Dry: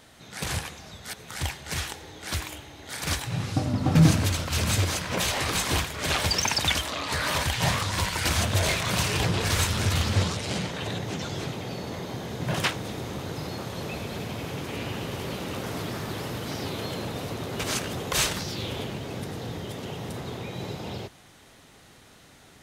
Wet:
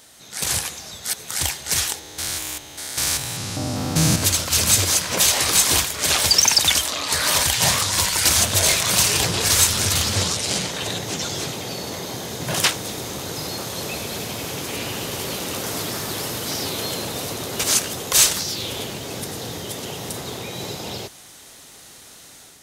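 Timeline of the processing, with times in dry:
1.99–4.23 s: spectrogram pixelated in time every 200 ms
whole clip: tone controls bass -5 dB, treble +12 dB; level rider gain up to 4.5 dB

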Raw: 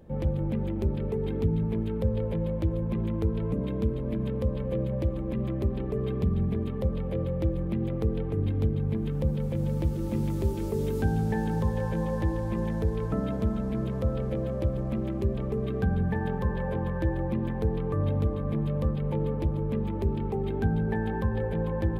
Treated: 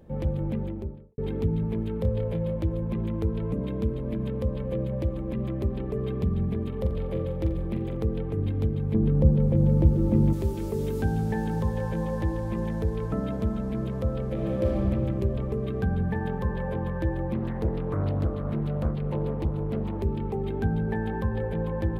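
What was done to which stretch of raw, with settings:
0.48–1.18 s: studio fade out
1.97–2.56 s: doubling 29 ms -8 dB
6.68–7.97 s: flutter echo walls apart 7.4 m, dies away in 0.36 s
8.94–10.33 s: tilt shelf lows +8 dB, about 1.2 kHz
14.32–14.78 s: reverb throw, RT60 2.8 s, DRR -3.5 dB
17.34–20.02 s: loudspeaker Doppler distortion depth 0.59 ms

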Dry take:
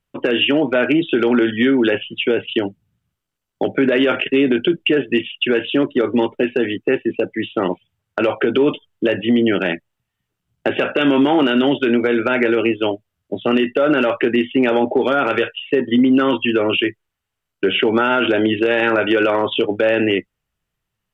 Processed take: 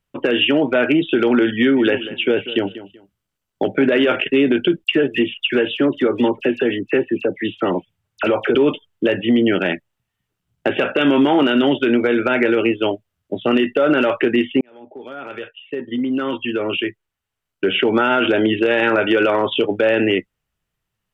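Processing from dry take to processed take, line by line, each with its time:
1.57–4.16 s: feedback delay 190 ms, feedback 23%, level -15 dB
4.84–8.55 s: phase dispersion lows, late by 59 ms, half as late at 2.1 kHz
14.61–18.05 s: fade in

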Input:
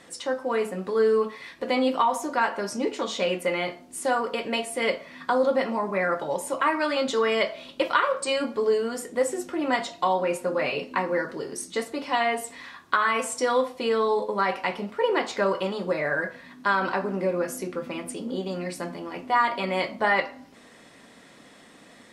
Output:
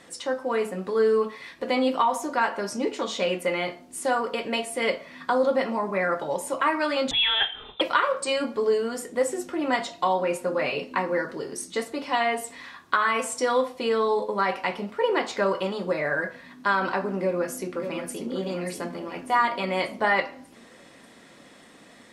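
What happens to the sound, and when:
7.11–7.81 s: frequency inversion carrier 3.8 kHz
17.16–18.29 s: echo throw 590 ms, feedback 55%, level -8.5 dB

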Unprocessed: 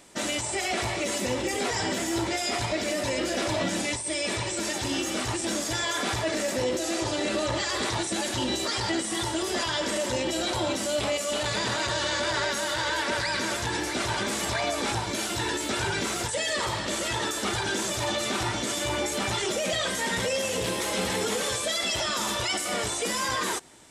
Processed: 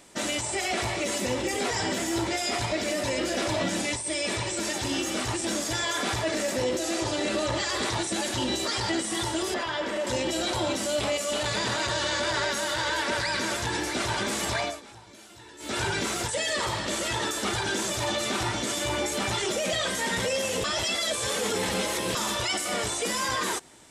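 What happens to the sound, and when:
9.54–10.07 s: tone controls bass -6 dB, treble -14 dB
14.60–15.78 s: dip -19.5 dB, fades 0.21 s
20.64–22.15 s: reverse

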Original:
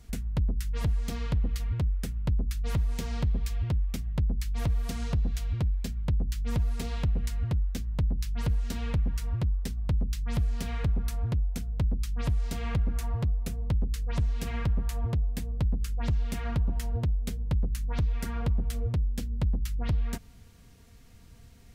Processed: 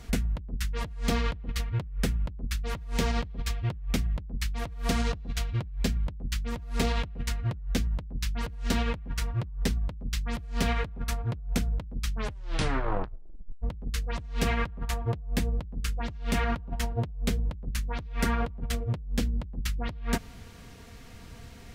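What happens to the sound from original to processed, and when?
12.10 s: tape stop 1.52 s
whole clip: treble shelf 5.3 kHz -9.5 dB; compressor with a negative ratio -31 dBFS, ratio -0.5; bass shelf 250 Hz -8 dB; trim +9 dB

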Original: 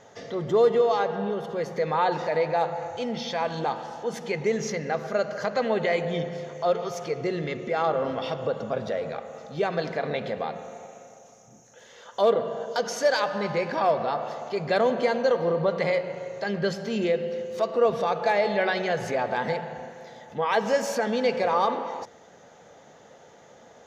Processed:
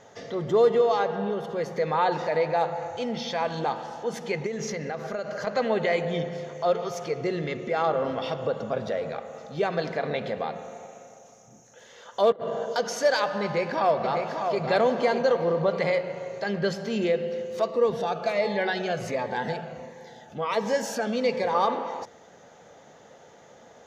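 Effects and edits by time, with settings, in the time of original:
4.46–5.47 s: compression, threshold -27 dBFS
12.32–12.75 s: compressor with a negative ratio -31 dBFS, ratio -0.5
13.43–14.62 s: echo throw 600 ms, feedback 40%, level -6 dB
17.68–21.55 s: Shepard-style phaser falling 1.4 Hz

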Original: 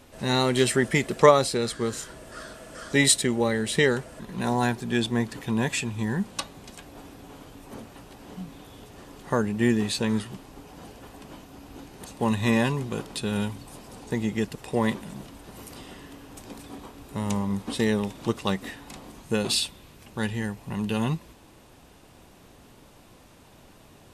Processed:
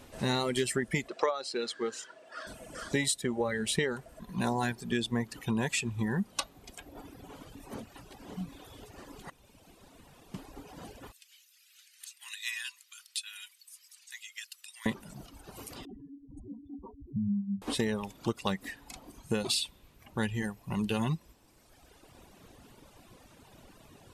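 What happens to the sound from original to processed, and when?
1.08–2.47 s: band-pass 370–5500 Hz
9.30–10.34 s: room tone
11.12–14.86 s: Bessel high-pass 2.8 kHz, order 6
15.85–17.62 s: spectral contrast enhancement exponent 3.9
whole clip: reverb removal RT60 1.6 s; compression 8:1, threshold -26 dBFS

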